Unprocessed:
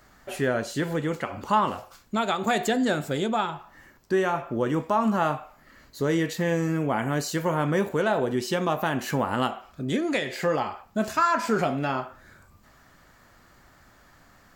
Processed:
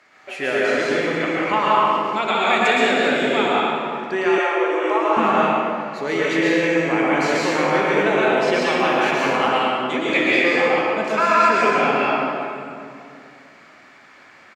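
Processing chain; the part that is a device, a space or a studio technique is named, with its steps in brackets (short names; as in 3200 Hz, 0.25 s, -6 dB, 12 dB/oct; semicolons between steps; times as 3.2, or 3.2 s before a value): station announcement (BPF 310–5000 Hz; bell 2300 Hz +11.5 dB 0.53 oct; loudspeakers at several distances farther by 21 m -12 dB, 37 m -11 dB; reverb RT60 2.4 s, pre-delay 0.109 s, DRR -6 dB); high shelf 7000 Hz +5.5 dB; 4.38–5.17 elliptic high-pass 330 Hz, stop band 40 dB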